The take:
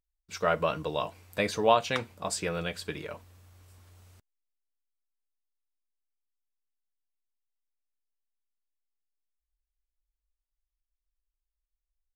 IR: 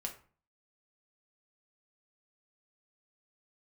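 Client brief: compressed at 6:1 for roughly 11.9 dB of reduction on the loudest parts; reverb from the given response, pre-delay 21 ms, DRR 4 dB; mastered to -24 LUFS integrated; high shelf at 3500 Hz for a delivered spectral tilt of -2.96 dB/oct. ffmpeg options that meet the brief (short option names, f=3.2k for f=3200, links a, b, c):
-filter_complex "[0:a]highshelf=f=3.5k:g=6.5,acompressor=threshold=-29dB:ratio=6,asplit=2[a][b];[1:a]atrim=start_sample=2205,adelay=21[c];[b][c]afir=irnorm=-1:irlink=0,volume=-3dB[d];[a][d]amix=inputs=2:normalize=0,volume=9.5dB"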